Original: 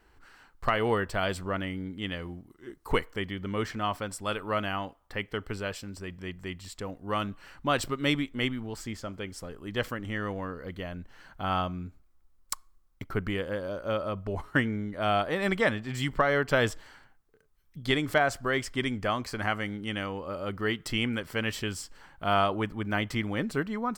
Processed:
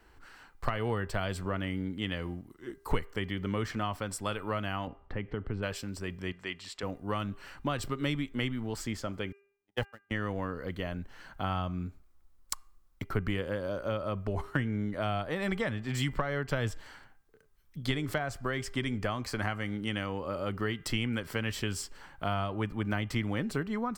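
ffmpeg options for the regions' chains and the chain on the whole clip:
-filter_complex "[0:a]asettb=1/sr,asplit=3[s0][s1][s2];[s0]atrim=end=4.874[s3];[s1]atrim=start=4.87:end=5.63,asetpts=PTS-STARTPTS,afade=t=in:d=0.004:c=qsin,afade=t=out:st=0.756:d=0.004:c=qsin,lowpass=2800,lowshelf=f=490:g=11.5,acompressor=threshold=0.0141:ratio=2.5:attack=3.2:release=140:knee=1:detection=peak[s4];[s2]atrim=start=5.626[s5];[s3][s4]acrossfade=d=0.004:c1=hsin:c2=qsin[s6];[s6][s5]acrossfade=d=0.004:c1=qsin:c2=hsin,asettb=1/sr,asplit=3[s7][s8][s9];[s7]atrim=end=6.324[s10];[s8]atrim=start=6.32:end=6.83,asetpts=PTS-STARTPTS,afade=t=in:d=0.004:c=qsin,afade=t=out:st=0.506:d=0.004:c=qsin,lowpass=3100,aemphasis=mode=production:type=riaa[s11];[s9]atrim=start=6.826[s12];[s10][s11]acrossfade=d=0.004:c1=hsin:c2=qsin[s13];[s13][s12]acrossfade=d=0.004:c1=qsin:c2=hsin,asettb=1/sr,asplit=3[s14][s15][s16];[s14]atrim=end=9.324[s17];[s15]atrim=start=9.32:end=10.11,asetpts=PTS-STARTPTS,afade=t=in:d=0.004:c=qsin,afade=t=out:st=0.786:d=0.004:c=qsin,aeval=exprs='val(0)+0.5*0.0119*sgn(val(0))':c=same,agate=range=0.00112:threshold=0.0355:ratio=16:release=100:detection=peak,equalizer=f=830:t=o:w=0.3:g=13[s18];[s16]atrim=start=10.106[s19];[s17][s18]acrossfade=d=0.004:c1=hsin:c2=qsin[s20];[s20][s19]acrossfade=d=0.004:c1=qsin:c2=hsin,acrossover=split=160[s21][s22];[s22]acompressor=threshold=0.0251:ratio=6[s23];[s21][s23]amix=inputs=2:normalize=0,bandreject=f=399.7:t=h:w=4,bandreject=f=799.4:t=h:w=4,bandreject=f=1199.1:t=h:w=4,bandreject=f=1598.8:t=h:w=4,bandreject=f=1998.5:t=h:w=4,bandreject=f=2398.2:t=h:w=4,bandreject=f=2797.9:t=h:w=4,volume=1.26"

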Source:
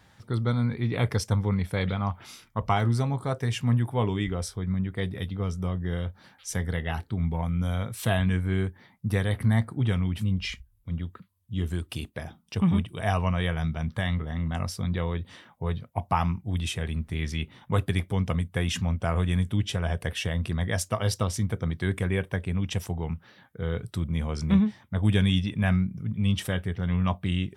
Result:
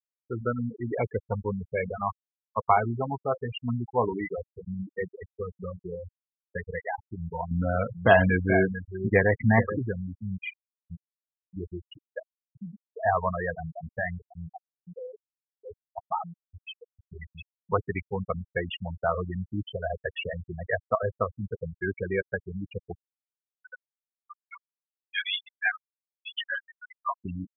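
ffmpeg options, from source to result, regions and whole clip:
-filter_complex "[0:a]asettb=1/sr,asplit=3[s0][s1][s2];[s0]atrim=end=7.514[s3];[s1]atrim=start=7.51:end=9.79,asetpts=PTS-STARTPTS,afade=t=in:d=0.004:c=qsin,afade=t=out:st=2.276:d=0.004:c=qsin,acontrast=77,aecho=1:1:434:0.355,atrim=end_sample=100548[s4];[s2]atrim=start=9.786[s5];[s3][s4]acrossfade=d=0.004:c1=hsin:c2=qsin[s6];[s6][s5]acrossfade=d=0.004:c1=qsin:c2=hsin,asettb=1/sr,asplit=3[s7][s8][s9];[s7]atrim=end=12.214[s10];[s8]atrim=start=12.21:end=12.85,asetpts=PTS-STARTPTS,afade=t=in:d=0.004:c=qsin,afade=t=out:st=0.636:d=0.004:c=qsin,lowshelf=f=190:g=8.5,acompressor=threshold=0.0282:ratio=6:attack=3.2:release=140:knee=1:detection=peak[s11];[s9]atrim=start=12.846[s12];[s10][s11]acrossfade=d=0.004:c1=hsin:c2=qsin[s13];[s13][s12]acrossfade=d=0.004:c1=qsin:c2=hsin,asettb=1/sr,asplit=3[s14][s15][s16];[s14]atrim=end=14.484[s17];[s15]atrim=start=14.48:end=17.02,asetpts=PTS-STARTPTS,afade=t=in:d=0.004:c=qsin,afade=t=out:st=2.536:d=0.004:c=qsin,acompressor=threshold=0.0251:ratio=1.5:attack=3.2:release=140:knee=1:detection=peak,aeval=exprs='clip(val(0),-1,0.0422)':c=same[s18];[s16]atrim=start=17.016[s19];[s17][s18]acrossfade=d=0.004:c1=hsin:c2=qsin[s20];[s20][s19]acrossfade=d=0.004:c1=qsin:c2=hsin,asettb=1/sr,asplit=3[s21][s22][s23];[s21]atrim=end=23.004[s24];[s22]atrim=start=23:end=27.25,asetpts=PTS-STARTPTS,afade=t=in:d=0.004:c=qsin,afade=t=out:st=4.246:d=0.004:c=qsin,highpass=1200,flanger=delay=15.5:depth=5:speed=1.2,acontrast=74[s25];[s23]atrim=start=27.246[s26];[s24][s25]acrossfade=d=0.004:c1=hsin:c2=qsin[s27];[s27][s26]acrossfade=d=0.004:c1=qsin:c2=hsin,bass=f=250:g=-15,treble=f=4000:g=-14,afftfilt=real='re*gte(hypot(re,im),0.0708)':imag='im*gte(hypot(re,im),0.0708)':win_size=1024:overlap=0.75,volume=1.88"

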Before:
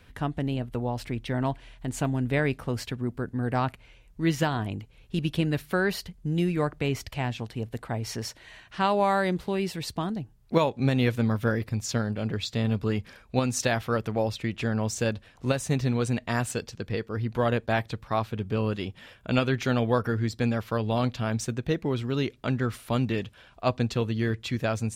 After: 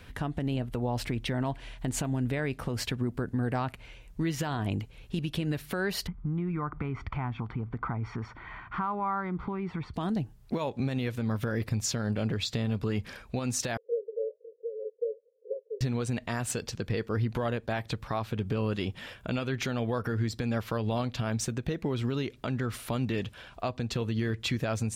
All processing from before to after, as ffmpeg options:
-filter_complex "[0:a]asettb=1/sr,asplit=3[s0][s1][s2];[s0]atrim=end=6.074[s3];[s1]atrim=start=6.07:end=9.94,asetpts=PTS-STARTPTS,afade=t=in:d=0.004:c=qsin,afade=t=out:st=3.866:d=0.004:c=qsin,acompressor=threshold=0.0126:ratio=4:attack=3.2:release=140:knee=1:detection=peak,lowpass=f=1400:t=q:w=2.1,aecho=1:1:0.9:0.63,atrim=end_sample=170667[s4];[s2]atrim=start=9.936[s5];[s3][s4]acrossfade=d=0.004:c1=hsin:c2=qsin[s6];[s6][s5]acrossfade=d=0.004:c1=qsin:c2=hsin,asettb=1/sr,asplit=3[s7][s8][s9];[s7]atrim=end=13.774[s10];[s8]atrim=start=13.77:end=15.81,asetpts=PTS-STARTPTS,afade=t=in:d=0.004:c=qsin,afade=t=out:st=2.036:d=0.004:c=qsin,asuperpass=centerf=470:order=8:qfactor=4.2,flanger=delay=5.9:depth=8:regen=-46:speed=1.1:shape=sinusoidal[s11];[s9]atrim=start=15.806[s12];[s10][s11]acrossfade=d=0.004:c1=hsin:c2=qsin[s13];[s13][s12]acrossfade=d=0.004:c1=qsin:c2=hsin,acompressor=threshold=0.0398:ratio=6,alimiter=level_in=1.19:limit=0.0631:level=0:latency=1:release=119,volume=0.841,volume=1.78"

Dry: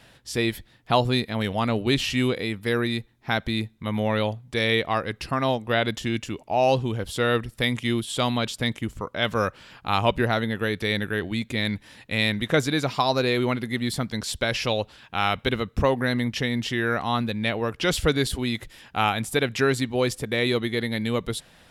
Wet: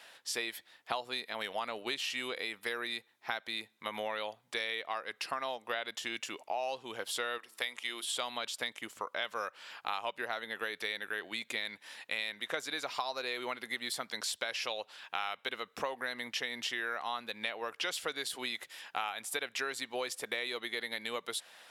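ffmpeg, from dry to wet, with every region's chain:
-filter_complex "[0:a]asettb=1/sr,asplit=3[s0][s1][s2];[s0]atrim=end=7.384[s3];[s1]atrim=start=7.38:end=8.05,asetpts=PTS-STARTPTS,afade=t=in:d=0.004:c=qsin,afade=t=out:st=0.666:d=0.004:c=qsin,equalizer=f=110:t=o:w=2.3:g=-15,bandreject=f=109.8:t=h:w=4,bandreject=f=219.6:t=h:w=4,bandreject=f=329.4:t=h:w=4,bandreject=f=439.2:t=h:w=4,bandreject=f=549:t=h:w=4,bandreject=f=658.8:t=h:w=4,bandreject=f=768.6:t=h:w=4,bandreject=f=878.4:t=h:w=4,bandreject=f=988.2:t=h:w=4,bandreject=f=1098:t=h:w=4,bandreject=f=1207.8:t=h:w=4,bandreject=f=1317.6:t=h:w=4[s4];[s2]atrim=start=8.046[s5];[s3][s4]acrossfade=d=0.004:c1=hsin:c2=qsin[s6];[s6][s5]acrossfade=d=0.004:c1=qsin:c2=hsin,highpass=670,acompressor=threshold=0.0224:ratio=6"

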